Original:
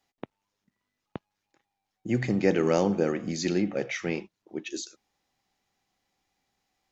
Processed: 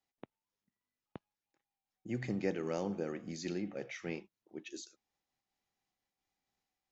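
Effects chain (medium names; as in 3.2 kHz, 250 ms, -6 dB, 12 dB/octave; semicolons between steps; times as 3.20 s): random flutter of the level, depth 55%; trim -9 dB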